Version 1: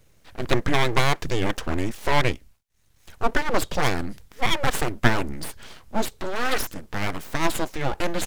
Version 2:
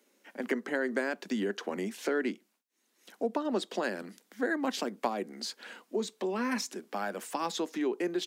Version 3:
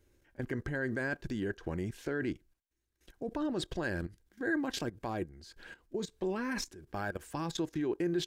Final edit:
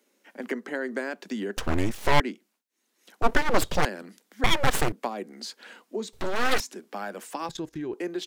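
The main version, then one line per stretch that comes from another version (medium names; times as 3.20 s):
2
1.57–2.20 s: from 1
3.22–3.85 s: from 1
4.44–4.92 s: from 1
6.13–6.60 s: from 1
7.49–7.94 s: from 3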